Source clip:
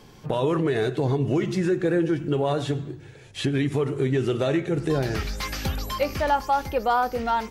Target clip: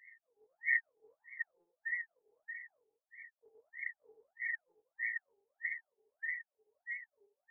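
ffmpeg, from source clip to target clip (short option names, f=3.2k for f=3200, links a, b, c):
-af "afftfilt=real='re*(1-between(b*sr/4096,290,1800))':imag='im*(1-between(b*sr/4096,290,1800))':win_size=4096:overlap=0.75,afftfilt=real='re*between(b*sr/1024,550*pow(1600/550,0.5+0.5*sin(2*PI*1.6*pts/sr))/1.41,550*pow(1600/550,0.5+0.5*sin(2*PI*1.6*pts/sr))*1.41)':imag='im*between(b*sr/1024,550*pow(1600/550,0.5+0.5*sin(2*PI*1.6*pts/sr))/1.41,550*pow(1600/550,0.5+0.5*sin(2*PI*1.6*pts/sr))*1.41)':win_size=1024:overlap=0.75,volume=13dB"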